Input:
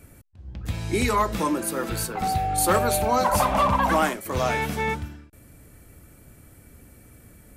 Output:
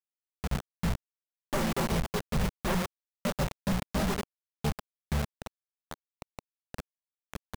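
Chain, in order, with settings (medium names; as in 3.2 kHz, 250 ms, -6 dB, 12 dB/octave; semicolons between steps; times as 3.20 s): random holes in the spectrogram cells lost 77%; high-pass 58 Hz 24 dB/octave; bass shelf 91 Hz +10 dB; hum notches 60/120/180 Hz; delay 117 ms -19 dB; in parallel at +1 dB: compression 10:1, threshold -34 dBFS, peak gain reduction 17.5 dB; on the sum: steep low-pass 530 Hz 72 dB/octave; valve stage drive 21 dB, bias 0.7; comb 5.1 ms, depth 92%; companded quantiser 2-bit; peaking EQ 340 Hz -10 dB 0.7 oct; trim +1 dB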